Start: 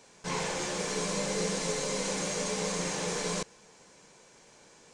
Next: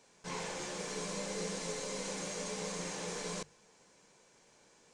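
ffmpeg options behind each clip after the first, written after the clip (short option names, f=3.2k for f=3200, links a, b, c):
-af "bandreject=f=50:t=h:w=6,bandreject=f=100:t=h:w=6,bandreject=f=150:t=h:w=6,volume=-7.5dB"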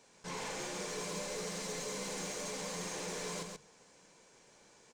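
-filter_complex "[0:a]asoftclip=type=tanh:threshold=-36dB,asplit=2[a][b];[b]aecho=0:1:134:0.562[c];[a][c]amix=inputs=2:normalize=0,volume=1dB"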